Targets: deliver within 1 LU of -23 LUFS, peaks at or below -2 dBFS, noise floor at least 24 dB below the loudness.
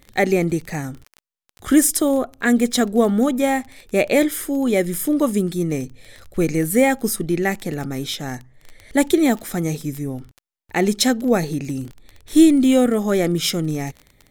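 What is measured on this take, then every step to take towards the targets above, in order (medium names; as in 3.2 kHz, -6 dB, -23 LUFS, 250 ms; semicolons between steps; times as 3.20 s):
tick rate 18 per s; loudness -19.5 LUFS; peak level -2.0 dBFS; loudness target -23.0 LUFS
-> de-click; trim -3.5 dB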